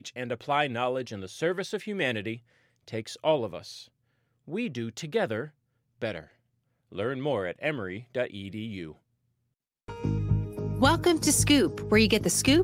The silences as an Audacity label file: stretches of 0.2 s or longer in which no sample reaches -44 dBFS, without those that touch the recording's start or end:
2.380000	2.880000	silence
3.840000	4.480000	silence
5.480000	6.020000	silence
6.240000	6.920000	silence
8.920000	9.880000	silence